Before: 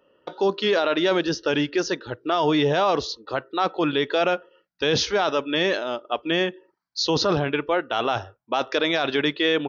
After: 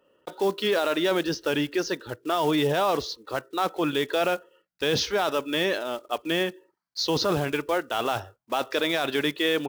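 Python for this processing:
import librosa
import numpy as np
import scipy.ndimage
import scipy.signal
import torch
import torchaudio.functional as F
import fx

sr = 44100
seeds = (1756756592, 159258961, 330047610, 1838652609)

y = fx.block_float(x, sr, bits=5)
y = y * 10.0 ** (-3.0 / 20.0)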